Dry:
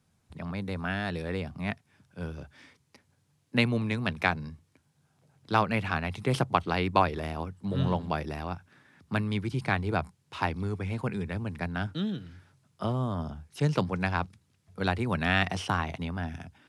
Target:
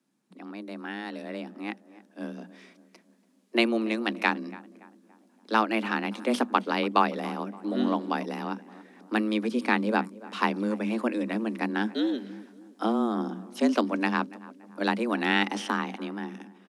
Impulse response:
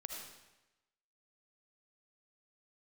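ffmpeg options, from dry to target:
-filter_complex "[0:a]afreqshift=110,asplit=2[s0][s1];[s1]adelay=285,lowpass=f=1500:p=1,volume=0.126,asplit=2[s2][s3];[s3]adelay=285,lowpass=f=1500:p=1,volume=0.51,asplit=2[s4][s5];[s5]adelay=285,lowpass=f=1500:p=1,volume=0.51,asplit=2[s6][s7];[s7]adelay=285,lowpass=f=1500:p=1,volume=0.51[s8];[s0][s2][s4][s6][s8]amix=inputs=5:normalize=0,dynaudnorm=f=130:g=31:m=3.76,volume=0.531"

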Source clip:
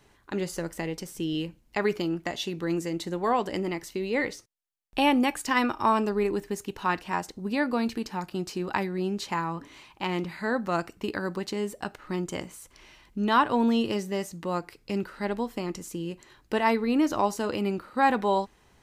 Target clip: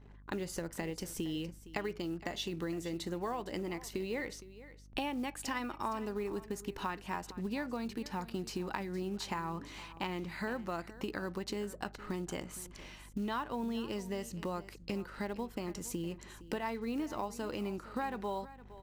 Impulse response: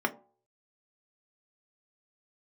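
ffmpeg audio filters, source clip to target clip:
-af "acompressor=threshold=0.0158:ratio=6,acrusher=bits=7:mode=log:mix=0:aa=0.000001,aeval=exprs='val(0)+0.00158*(sin(2*PI*50*n/s)+sin(2*PI*2*50*n/s)/2+sin(2*PI*3*50*n/s)/3+sin(2*PI*4*50*n/s)/4+sin(2*PI*5*50*n/s)/5)':c=same,anlmdn=0.0001,aecho=1:1:463:0.15,volume=1.12"

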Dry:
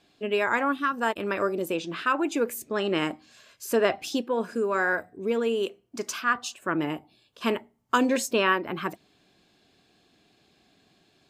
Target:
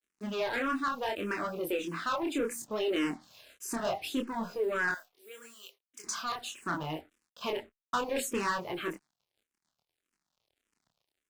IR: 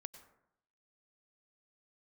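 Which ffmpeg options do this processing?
-filter_complex "[0:a]asplit=2[s0][s1];[s1]volume=20,asoftclip=hard,volume=0.0501,volume=0.531[s2];[s0][s2]amix=inputs=2:normalize=0,acrusher=bits=7:mix=0:aa=0.5,asettb=1/sr,asplit=3[s3][s4][s5];[s3]atrim=end=4.914[s6];[s4]atrim=start=4.91:end=6.04,asetpts=PTS-STARTPTS,afade=t=in:d=0.004:c=qsin,afade=t=out:st=1.126:d=0.004:c=qsin,aderivative[s7];[s5]atrim=start=6.036[s8];[s6][s7]acrossfade=d=0.004:c1=hsin:c2=qsin[s9];[s9][s8]acrossfade=d=0.004:c1=qsin:c2=hsin,flanger=delay=22.5:depth=7.6:speed=0.69,asoftclip=type=tanh:threshold=0.0708,asplit=2[s10][s11];[s11]afreqshift=-1.7[s12];[s10][s12]amix=inputs=2:normalize=1"

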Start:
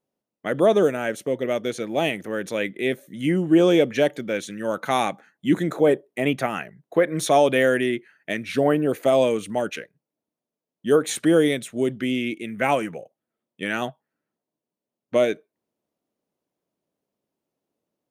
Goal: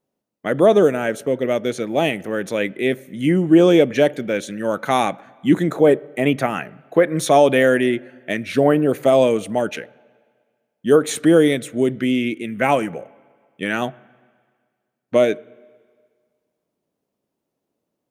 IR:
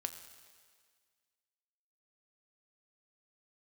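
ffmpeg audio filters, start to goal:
-filter_complex "[0:a]asplit=2[s0][s1];[s1]lowshelf=f=450:g=6[s2];[1:a]atrim=start_sample=2205,lowpass=2600[s3];[s2][s3]afir=irnorm=-1:irlink=0,volume=0.237[s4];[s0][s4]amix=inputs=2:normalize=0,volume=1.33"

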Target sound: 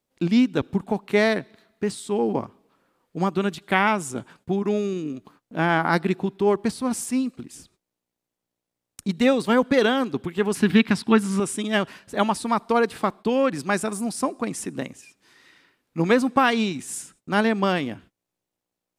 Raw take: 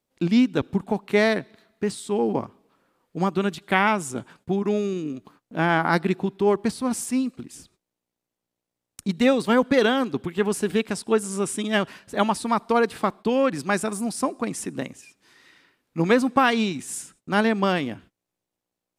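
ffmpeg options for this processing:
-filter_complex "[0:a]asettb=1/sr,asplit=3[s0][s1][s2];[s0]atrim=end=10.554[s3];[s1]atrim=start=10.55:end=11.4,asetpts=PTS-STARTPTS,afade=t=in:d=0.004:c=qsin,afade=t=out:st=0.846:d=0.004:c=qsin,equalizer=f=125:t=o:w=1:g=9,equalizer=f=250:t=o:w=1:g=8,equalizer=f=500:t=o:w=1:g=-6,equalizer=f=1000:t=o:w=1:g=5,equalizer=f=2000:t=o:w=1:g=7,equalizer=f=4000:t=o:w=1:g=6,equalizer=f=8000:t=o:w=1:g=-7[s4];[s2]atrim=start=11.396[s5];[s3][s4]acrossfade=d=0.004:c1=hsin:c2=qsin[s6];[s6][s5]acrossfade=d=0.004:c1=qsin:c2=hsin"

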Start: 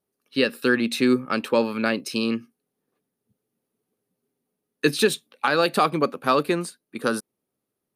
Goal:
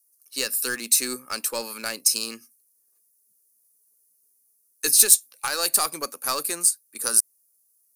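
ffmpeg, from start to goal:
-filter_complex "[0:a]highpass=f=990:p=1,asplit=2[s0][s1];[s1]aeval=exprs='clip(val(0),-1,0.0335)':c=same,volume=0.501[s2];[s0][s2]amix=inputs=2:normalize=0,aexciter=amount=8.7:drive=8.7:freq=5100,volume=0.422"

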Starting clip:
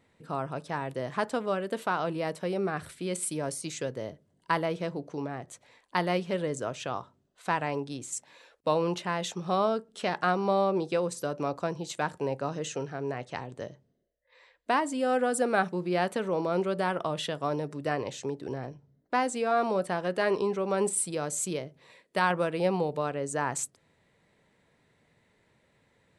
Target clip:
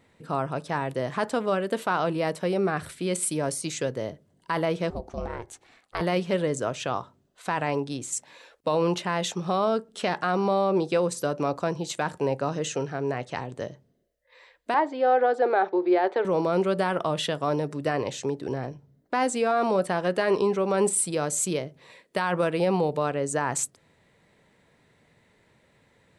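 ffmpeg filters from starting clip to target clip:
-filter_complex "[0:a]alimiter=limit=0.112:level=0:latency=1:release=14,asettb=1/sr,asplit=3[s0][s1][s2];[s0]atrim=end=4.904[s3];[s1]atrim=start=4.9:end=6.01,asetpts=PTS-STARTPTS,afade=t=in:d=0.004:c=qsin,afade=t=out:st=1.106:d=0.004:c=qsin,aeval=exprs='val(0)*sin(2*PI*230*n/s)':c=same[s4];[s2]atrim=start=6.006[s5];[s3][s4]acrossfade=d=0.004:c1=hsin:c2=qsin[s6];[s6][s5]acrossfade=d=0.004:c1=qsin:c2=hsin,asettb=1/sr,asplit=3[s7][s8][s9];[s7]atrim=end=14.744[s10];[s8]atrim=start=14.74:end=16.25,asetpts=PTS-STARTPTS,afade=t=in:d=0.004:c=qsin,afade=t=out:st=1.506:d=0.004:c=qsin,highpass=f=350:w=0.5412,highpass=f=350:w=1.3066,equalizer=f=370:t=q:w=4:g=8,equalizer=f=810:t=q:w=4:g=7,equalizer=f=1200:t=q:w=4:g=-3,equalizer=f=2800:t=q:w=4:g=-9,lowpass=f=3700:w=0.5412,lowpass=f=3700:w=1.3066[s11];[s9]atrim=start=16.246[s12];[s10][s11]acrossfade=d=0.004:c1=hsin:c2=qsin[s13];[s13][s12]acrossfade=d=0.004:c1=qsin:c2=hsin,volume=1.78"

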